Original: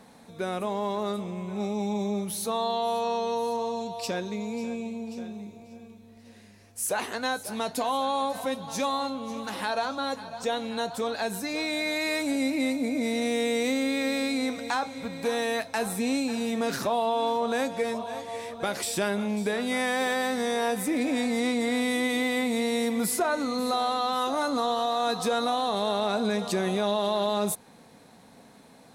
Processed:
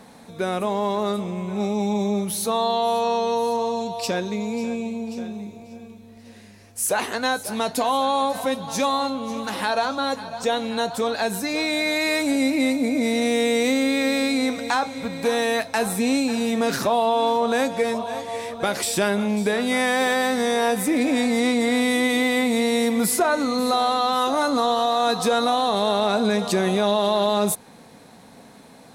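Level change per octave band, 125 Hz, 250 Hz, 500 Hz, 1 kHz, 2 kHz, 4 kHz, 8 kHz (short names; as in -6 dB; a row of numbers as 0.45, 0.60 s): +6.0, +6.0, +6.0, +6.0, +6.0, +6.0, +6.0 dB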